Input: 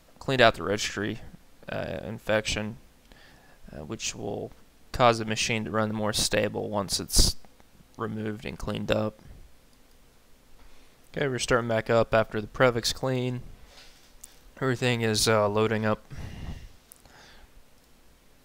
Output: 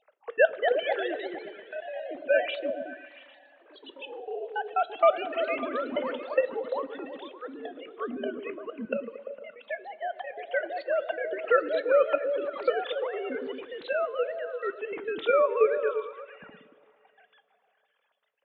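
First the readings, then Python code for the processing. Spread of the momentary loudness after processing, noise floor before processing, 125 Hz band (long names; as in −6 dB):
17 LU, −58 dBFS, below −30 dB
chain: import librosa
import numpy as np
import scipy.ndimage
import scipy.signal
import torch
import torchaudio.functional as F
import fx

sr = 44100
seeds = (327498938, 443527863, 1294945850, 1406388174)

p1 = fx.sine_speech(x, sr)
p2 = fx.level_steps(p1, sr, step_db=21)
p3 = p1 + (p2 * 10.0 ** (3.0 / 20.0))
p4 = fx.step_gate(p3, sr, bpm=200, pattern='xx.x.x.x.xxxxxxx', floor_db=-24.0, edge_ms=4.5)
p5 = fx.rev_double_slope(p4, sr, seeds[0], early_s=0.21, late_s=2.9, knee_db=-18, drr_db=13.0)
p6 = fx.echo_pitch(p5, sr, ms=284, semitones=2, count=2, db_per_echo=-6.0)
p7 = p6 + fx.echo_stepped(p6, sr, ms=114, hz=200.0, octaves=0.7, feedback_pct=70, wet_db=-2.0, dry=0)
y = p7 * 10.0 ** (-6.5 / 20.0)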